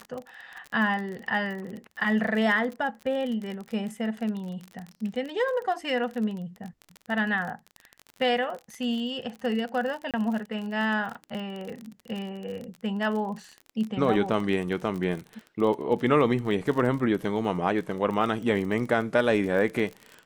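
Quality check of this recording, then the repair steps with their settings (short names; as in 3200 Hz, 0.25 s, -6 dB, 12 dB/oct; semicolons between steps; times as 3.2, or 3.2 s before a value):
crackle 34/s -32 dBFS
10.11–10.14 gap 27 ms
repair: de-click; interpolate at 10.11, 27 ms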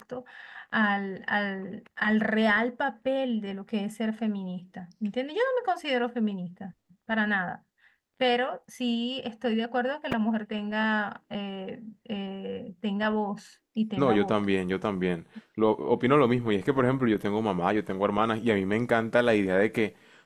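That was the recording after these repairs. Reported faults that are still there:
none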